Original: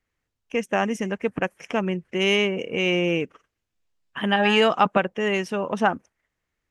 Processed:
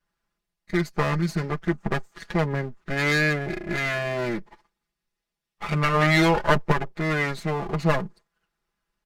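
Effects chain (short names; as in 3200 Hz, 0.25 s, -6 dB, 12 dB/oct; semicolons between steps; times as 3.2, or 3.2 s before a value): minimum comb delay 4.4 ms; comb 3.6 ms, depth 45%; speed mistake 45 rpm record played at 33 rpm; gain +1 dB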